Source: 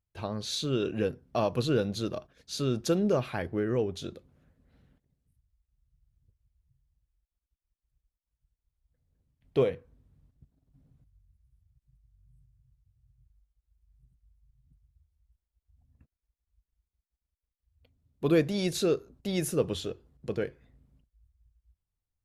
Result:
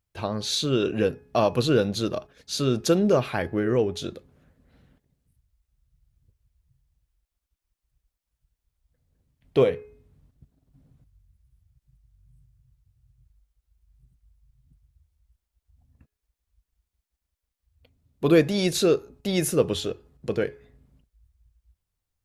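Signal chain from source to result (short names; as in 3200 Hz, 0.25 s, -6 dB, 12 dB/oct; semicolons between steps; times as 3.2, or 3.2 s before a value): low shelf 230 Hz -3.5 dB; de-hum 420.9 Hz, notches 6; gain +7 dB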